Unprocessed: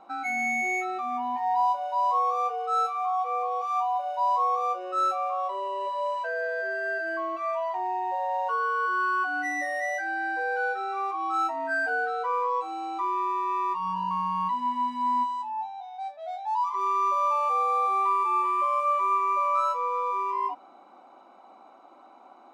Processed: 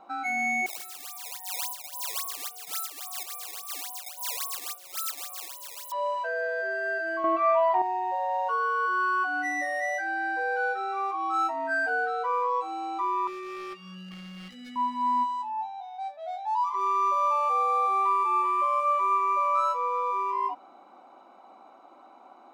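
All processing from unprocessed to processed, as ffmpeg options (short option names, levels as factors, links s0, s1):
-filter_complex "[0:a]asettb=1/sr,asplit=3[s0][s1][s2];[s0]atrim=end=0.664[s3];[s1]atrim=start=0.66:end=5.92,asetpts=PTS-STARTPTS,afade=t=in:d=0.004:c=qsin,afade=t=out:st=5.256:d=0.004:c=qsin,highpass=f=470:p=1,acrusher=samples=17:mix=1:aa=0.000001:lfo=1:lforange=27.2:lforate=3.6,aderivative[s4];[s2]atrim=start=5.916[s5];[s3][s4]acrossfade=d=0.004:c1=hsin:c2=qsin[s6];[s6][s5]acrossfade=d=0.004:c1=qsin:c2=hsin,asettb=1/sr,asplit=3[s7][s8][s9];[s7]atrim=end=7.244[s10];[s8]atrim=start=7.24:end=7.82,asetpts=PTS-STARTPTS,afade=t=in:d=0.004:c=qsin,afade=t=out:st=0.576:d=0.004:c=qsin,bass=f=250:g=8,treble=f=4000:g=-13,acontrast=80[s11];[s9]atrim=start=7.816[s12];[s10][s11]acrossfade=d=0.004:c1=hsin:c2=qsin[s13];[s13][s12]acrossfade=d=0.004:c1=qsin:c2=hsin,asettb=1/sr,asplit=3[s14][s15][s16];[s14]atrim=end=13.274[s17];[s15]atrim=start=13.27:end=14.76,asetpts=PTS-STARTPTS,afade=t=in:d=0.004:c=qsin,afade=t=out:st=1.486:d=0.004:c=qsin,asoftclip=type=hard:threshold=0.075,asuperstop=centerf=1000:order=12:qfactor=2.9,asplit=2[s18][s19];[s19]adelay=14,volume=0.355[s20];[s18][s20]amix=inputs=2:normalize=0,atrim=end_sample=65709[s21];[s16]atrim=start=14.756[s22];[s17][s21]acrossfade=d=0.004:c1=hsin:c2=qsin[s23];[s23][s22]acrossfade=d=0.004:c1=qsin:c2=hsin"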